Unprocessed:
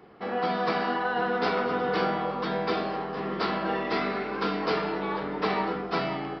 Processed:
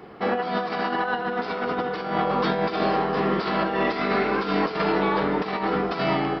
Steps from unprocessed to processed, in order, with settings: compressor with a negative ratio -30 dBFS, ratio -0.5; trim +6.5 dB

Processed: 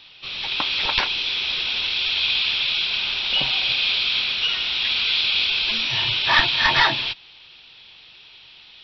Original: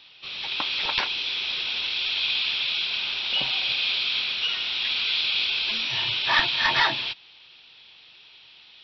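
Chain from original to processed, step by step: bass shelf 93 Hz +10 dB; trim +4 dB

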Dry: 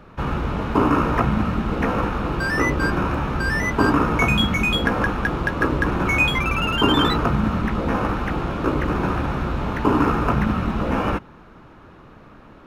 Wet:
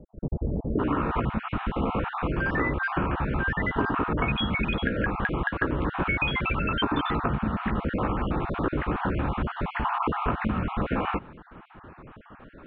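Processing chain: random holes in the spectrogram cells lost 30%; compression 4:1, threshold -23 dBFS, peak gain reduction 9.5 dB; steep low-pass 620 Hz 36 dB/octave, from 0.78 s 3.4 kHz

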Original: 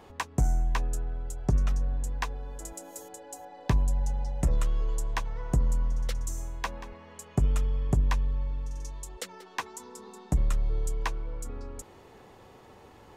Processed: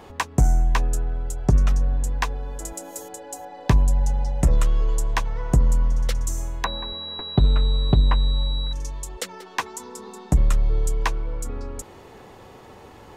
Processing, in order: 6.64–8.73 s: class-D stage that switches slowly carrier 3.9 kHz; trim +7.5 dB

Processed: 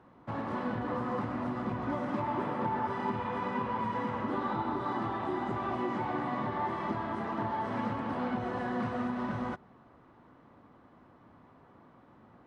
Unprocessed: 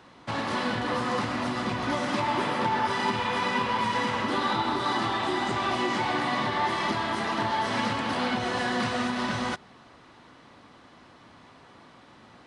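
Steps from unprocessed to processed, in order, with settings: FFT filter 210 Hz 0 dB, 1.2 kHz -4 dB, 4.4 kHz -21 dB; trim -3 dB

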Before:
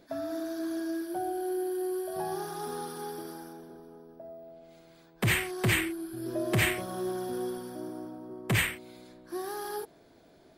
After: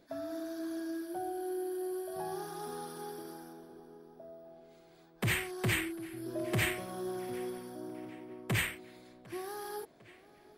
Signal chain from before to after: tape echo 751 ms, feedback 67%, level -20.5 dB, low-pass 5.4 kHz; trim -5 dB

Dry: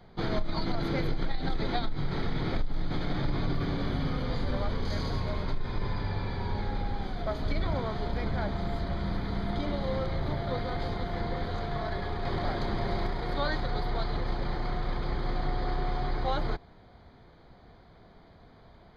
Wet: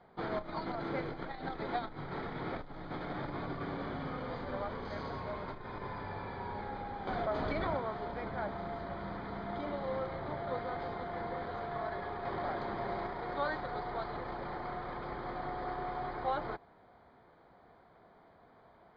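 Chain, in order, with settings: low-pass 1.1 kHz 12 dB/octave; tilt EQ +4.5 dB/octave; 7.07–7.77 s: level flattener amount 70%; trim +1 dB

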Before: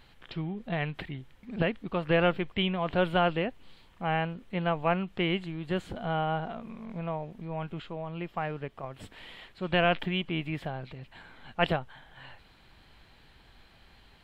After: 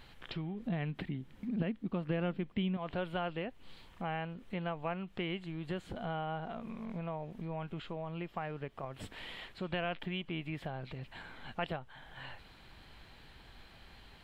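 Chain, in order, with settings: 0.62–2.77 s: peaking EQ 220 Hz +12.5 dB 1.3 oct; compression 2.5:1, threshold -41 dBFS, peak gain reduction 17 dB; trim +1.5 dB

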